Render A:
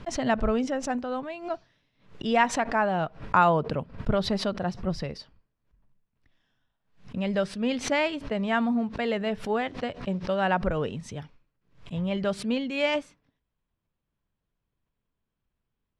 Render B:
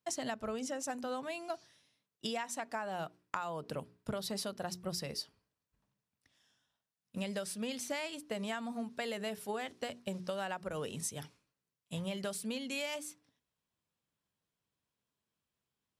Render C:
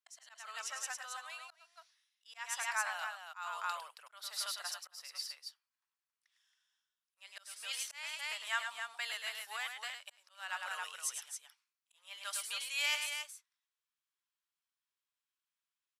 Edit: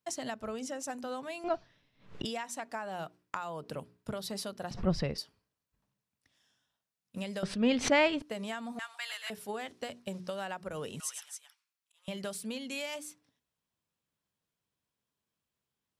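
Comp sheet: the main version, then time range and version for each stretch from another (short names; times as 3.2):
B
1.44–2.25 from A
4.71–5.18 from A
7.43–8.22 from A
8.79–9.3 from C
11–12.08 from C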